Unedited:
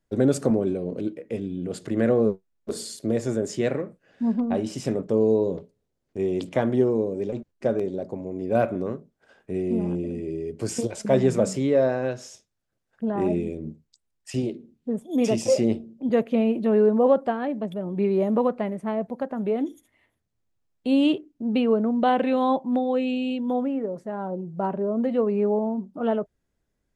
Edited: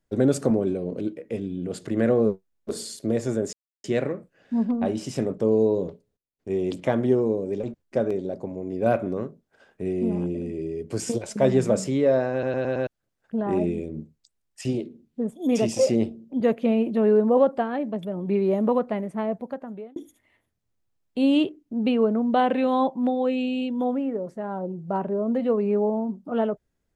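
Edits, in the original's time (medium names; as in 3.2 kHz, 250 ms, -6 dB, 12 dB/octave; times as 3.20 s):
3.53 s: insert silence 0.31 s
5.53–6.41 s: dip -21 dB, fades 0.33 s logarithmic
12.01 s: stutter in place 0.11 s, 5 plays
19.00–19.65 s: fade out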